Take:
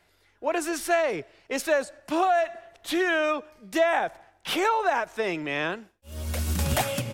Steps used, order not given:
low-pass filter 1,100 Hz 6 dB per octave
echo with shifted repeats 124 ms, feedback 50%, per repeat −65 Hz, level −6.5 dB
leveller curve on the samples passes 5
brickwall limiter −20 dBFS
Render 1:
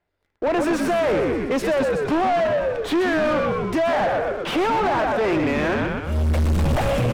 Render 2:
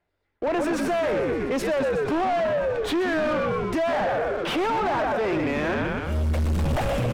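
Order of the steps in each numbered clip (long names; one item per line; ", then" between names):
brickwall limiter, then echo with shifted repeats, then leveller curve on the samples, then low-pass filter
echo with shifted repeats, then leveller curve on the samples, then low-pass filter, then brickwall limiter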